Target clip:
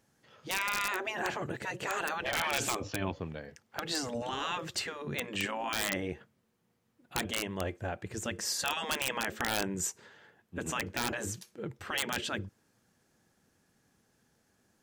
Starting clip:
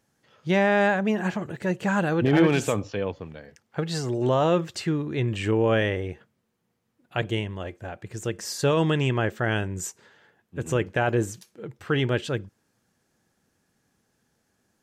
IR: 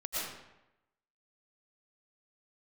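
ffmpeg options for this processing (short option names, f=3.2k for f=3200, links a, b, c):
-af "afftfilt=real='re*lt(hypot(re,im),0.178)':imag='im*lt(hypot(re,im),0.178)':win_size=1024:overlap=0.75,aeval=exprs='(mod(11.2*val(0)+1,2)-1)/11.2':c=same"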